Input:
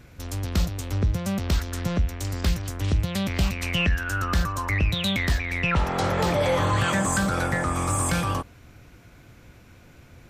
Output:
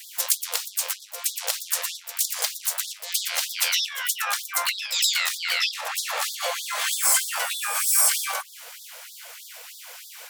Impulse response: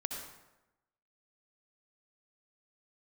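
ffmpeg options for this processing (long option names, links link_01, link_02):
-filter_complex "[0:a]adynamicequalizer=threshold=0.0126:dfrequency=250:dqfactor=1.3:tfrequency=250:tqfactor=1.3:attack=5:release=100:ratio=0.375:range=2:mode=cutabove:tftype=bell,asplit=4[link_01][link_02][link_03][link_04];[link_02]asetrate=29433,aresample=44100,atempo=1.49831,volume=-6dB[link_05];[link_03]asetrate=58866,aresample=44100,atempo=0.749154,volume=-4dB[link_06];[link_04]asetrate=88200,aresample=44100,atempo=0.5,volume=-7dB[link_07];[link_01][link_05][link_06][link_07]amix=inputs=4:normalize=0,acompressor=threshold=-30dB:ratio=12,crystalizer=i=3:c=0,afftfilt=real='re*gte(b*sr/1024,440*pow(3400/440,0.5+0.5*sin(2*PI*3.2*pts/sr)))':imag='im*gte(b*sr/1024,440*pow(3400/440,0.5+0.5*sin(2*PI*3.2*pts/sr)))':win_size=1024:overlap=0.75,volume=7.5dB"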